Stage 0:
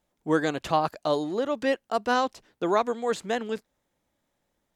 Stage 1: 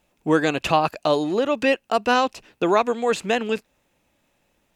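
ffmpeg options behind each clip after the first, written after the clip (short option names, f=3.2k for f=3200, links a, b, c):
-filter_complex "[0:a]equalizer=f=2.6k:t=o:w=0.22:g=12.5,asplit=2[a][b];[b]acompressor=threshold=-31dB:ratio=6,volume=0.5dB[c];[a][c]amix=inputs=2:normalize=0,volume=2.5dB"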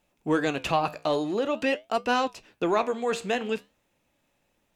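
-filter_complex "[0:a]asplit=2[a][b];[b]asoftclip=type=tanh:threshold=-19dB,volume=-11dB[c];[a][c]amix=inputs=2:normalize=0,flanger=delay=6.9:depth=9.3:regen=-75:speed=0.47:shape=sinusoidal,volume=-2.5dB"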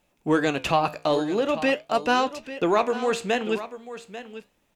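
-af "aecho=1:1:842:0.211,volume=3dB"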